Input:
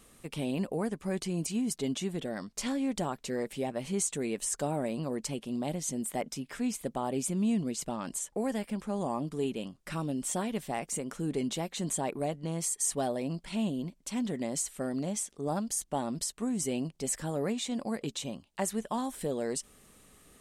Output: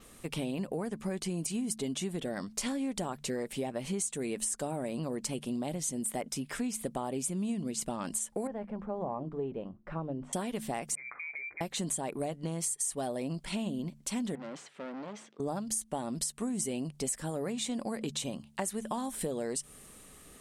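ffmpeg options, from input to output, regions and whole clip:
-filter_complex "[0:a]asettb=1/sr,asplit=3[a][b][c];[a]atrim=end=8.474[d];[b]atrim=start=8.47:end=10.33,asetpts=PTS-STARTPTS,afade=t=in:d=0.004:c=qsin,afade=t=out:st=1.856:d=0.004:c=qsin,lowpass=1k,equalizer=f=250:w=1.2:g=-7.5,bandreject=f=50:t=h:w=6,bandreject=f=100:t=h:w=6,bandreject=f=150:t=h:w=6,bandreject=f=200:t=h:w=6,bandreject=f=250:t=h:w=6,bandreject=f=300:t=h:w=6,bandreject=f=350:t=h:w=6[e];[c]atrim=start=10.326[f];[d][e]acrossfade=d=0.004:c1=hsin:c2=qsin[g];[g][f]acrossfade=d=0.004:c1=qsin:c2=hsin,asettb=1/sr,asplit=3[h][i][j];[h]atrim=end=10.954[k];[i]atrim=start=10.95:end=11.61,asetpts=PTS-STARTPTS,afade=t=in:d=0.004:c=qsin,afade=t=out:st=0.656:d=0.004:c=qsin,highpass=200,acompressor=threshold=-41dB:ratio=10:attack=3.2:release=140:knee=1:detection=peak,lowpass=f=2.2k:t=q:w=0.5098,lowpass=f=2.2k:t=q:w=0.6013,lowpass=f=2.2k:t=q:w=0.9,lowpass=f=2.2k:t=q:w=2.563,afreqshift=-2600[l];[j]atrim=start=11.606[m];[k][l]acrossfade=d=0.004:c1=hsin:c2=qsin[n];[n][m]acrossfade=d=0.004:c1=qsin:c2=hsin,asettb=1/sr,asplit=3[o][p][q];[o]atrim=end=14.354[r];[p]atrim=start=14.35:end=15.4,asetpts=PTS-STARTPTS,afade=t=in:d=0.004:c=qsin,afade=t=out:st=1.046:d=0.004:c=qsin,aemphasis=mode=reproduction:type=cd,aeval=exprs='(tanh(112*val(0)+0.5)-tanh(0.5))/112':c=same,highpass=250,lowpass=3.8k[s];[q]atrim=start=15.396[t];[r][s]acrossfade=d=0.004:c1=hsin:c2=qsin[u];[u][t]acrossfade=d=0.004:c1=qsin:c2=hsin,bandreject=f=73.04:t=h:w=4,bandreject=f=146.08:t=h:w=4,bandreject=f=219.12:t=h:w=4,adynamicequalizer=threshold=0.00282:dfrequency=9600:dqfactor=2.1:tfrequency=9600:tqfactor=2.1:attack=5:release=100:ratio=0.375:range=3.5:mode=boostabove:tftype=bell,acompressor=threshold=-35dB:ratio=6,volume=4dB"

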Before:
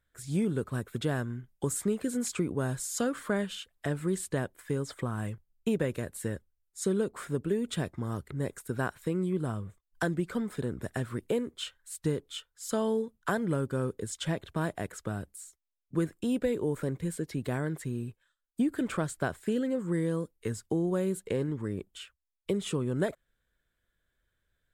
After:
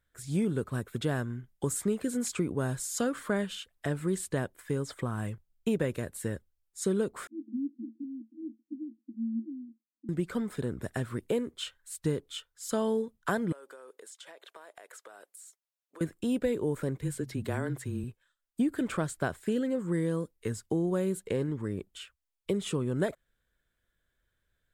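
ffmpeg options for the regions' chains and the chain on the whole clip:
-filter_complex "[0:a]asettb=1/sr,asplit=3[a][b][c];[a]atrim=end=7.274[d];[b]atrim=start=7.27:end=10.09,asetpts=PTS-STARTPTS,afade=t=in:d=0.004:c=qsin,afade=t=out:st=2.816:d=0.004:c=qsin,afreqshift=43,asuperpass=centerf=270:order=20:qfactor=2.5[e];[c]atrim=start=10.086[f];[d][e]acrossfade=d=0.004:c1=hsin:c2=qsin[g];[g][f]acrossfade=d=0.004:c1=qsin:c2=hsin,asettb=1/sr,asplit=3[h][i][j];[h]atrim=end=13.524[k];[i]atrim=start=13.52:end=16.01,asetpts=PTS-STARTPTS,afade=t=in:d=0.004:c=qsin,afade=t=out:st=2.486:d=0.004:c=qsin,highpass=f=470:w=0.5412,highpass=f=470:w=1.3066,acompressor=threshold=-45dB:ratio=12:attack=3.2:release=140:knee=1:detection=peak[l];[j]atrim=start=16.006[m];[k][l]acrossfade=d=0.004:c1=hsin:c2=qsin[n];[n][m]acrossfade=d=0.004:c1=qsin:c2=hsin,asettb=1/sr,asplit=3[o][p][q];[o]atrim=end=16.984[r];[p]atrim=start=16.98:end=18.04,asetpts=PTS-STARTPTS,afade=t=in:d=0.004:c=qsin,afade=t=out:st=1.056:d=0.004:c=qsin,bandreject=f=50:t=h:w=6,bandreject=f=100:t=h:w=6,bandreject=f=150:t=h:w=6,bandreject=f=200:t=h:w=6,bandreject=f=250:t=h:w=6,afreqshift=-21[s];[q]atrim=start=18.036[t];[r][s]acrossfade=d=0.004:c1=hsin:c2=qsin[u];[u][t]acrossfade=d=0.004:c1=qsin:c2=hsin"

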